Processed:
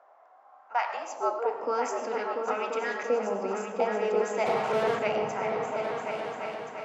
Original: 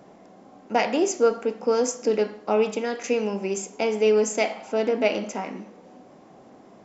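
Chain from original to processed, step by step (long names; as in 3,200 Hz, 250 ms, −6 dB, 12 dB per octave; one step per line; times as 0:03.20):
high-shelf EQ 5,100 Hz +12 dB
in parallel at −2 dB: downward compressor, threshold −29 dBFS, peak gain reduction 14.5 dB
on the sum: auto-filter band-pass saw up 0.33 Hz 630–1,800 Hz
0:04.46–0:04.99: mid-hump overdrive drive 29 dB, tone 2,000 Hz, clips at −23 dBFS
comb and all-pass reverb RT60 0.81 s, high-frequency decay 0.8×, pre-delay 60 ms, DRR 9 dB
high-pass filter sweep 1,300 Hz → 140 Hz, 0:01.04–0:01.96
0:00.89–0:01.39: frequency shifter −71 Hz
on a send: echo whose low-pass opens from repeat to repeat 344 ms, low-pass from 200 Hz, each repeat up 2 octaves, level 0 dB
on the sum: one half of a high-frequency compander decoder only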